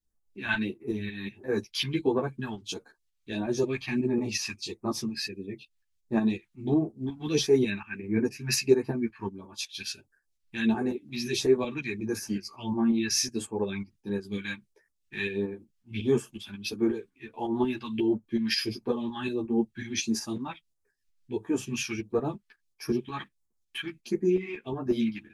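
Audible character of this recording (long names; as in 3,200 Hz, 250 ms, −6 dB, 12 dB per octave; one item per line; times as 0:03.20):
phaser sweep stages 2, 1.5 Hz, lowest notch 430–3,000 Hz
tremolo saw up 5.5 Hz, depth 55%
a shimmering, thickened sound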